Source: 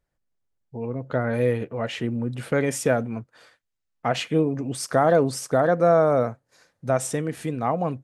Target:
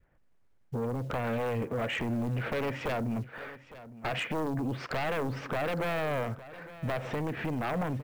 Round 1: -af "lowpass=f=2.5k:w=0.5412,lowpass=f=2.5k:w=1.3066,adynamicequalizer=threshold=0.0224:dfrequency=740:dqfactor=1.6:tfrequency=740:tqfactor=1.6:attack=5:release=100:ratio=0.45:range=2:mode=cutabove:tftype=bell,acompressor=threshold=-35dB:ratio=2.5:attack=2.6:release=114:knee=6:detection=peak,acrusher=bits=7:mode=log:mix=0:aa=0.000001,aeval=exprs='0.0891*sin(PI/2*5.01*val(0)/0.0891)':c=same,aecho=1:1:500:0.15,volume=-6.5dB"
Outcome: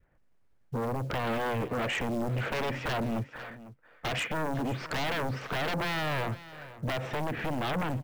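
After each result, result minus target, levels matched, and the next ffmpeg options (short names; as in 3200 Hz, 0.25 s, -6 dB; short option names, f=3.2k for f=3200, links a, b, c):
echo 0.359 s early; compressor: peak gain reduction -3.5 dB
-af "lowpass=f=2.5k:w=0.5412,lowpass=f=2.5k:w=1.3066,adynamicequalizer=threshold=0.0224:dfrequency=740:dqfactor=1.6:tfrequency=740:tqfactor=1.6:attack=5:release=100:ratio=0.45:range=2:mode=cutabove:tftype=bell,acompressor=threshold=-35dB:ratio=2.5:attack=2.6:release=114:knee=6:detection=peak,acrusher=bits=7:mode=log:mix=0:aa=0.000001,aeval=exprs='0.0891*sin(PI/2*5.01*val(0)/0.0891)':c=same,aecho=1:1:859:0.15,volume=-6.5dB"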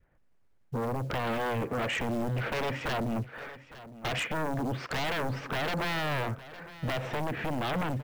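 compressor: peak gain reduction -3.5 dB
-af "lowpass=f=2.5k:w=0.5412,lowpass=f=2.5k:w=1.3066,adynamicequalizer=threshold=0.0224:dfrequency=740:dqfactor=1.6:tfrequency=740:tqfactor=1.6:attack=5:release=100:ratio=0.45:range=2:mode=cutabove:tftype=bell,acompressor=threshold=-41dB:ratio=2.5:attack=2.6:release=114:knee=6:detection=peak,acrusher=bits=7:mode=log:mix=0:aa=0.000001,aeval=exprs='0.0891*sin(PI/2*5.01*val(0)/0.0891)':c=same,aecho=1:1:859:0.15,volume=-6.5dB"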